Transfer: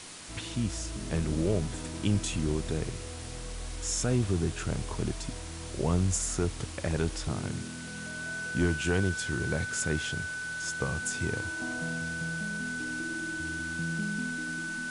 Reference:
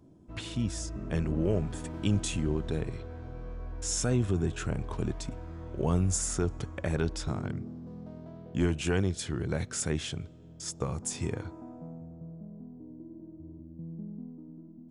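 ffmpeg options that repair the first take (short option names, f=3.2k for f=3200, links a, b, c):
-af "bandreject=f=1.5k:w=30,afwtdn=0.0071,asetnsamples=n=441:p=0,asendcmd='11.6 volume volume -6.5dB',volume=0dB"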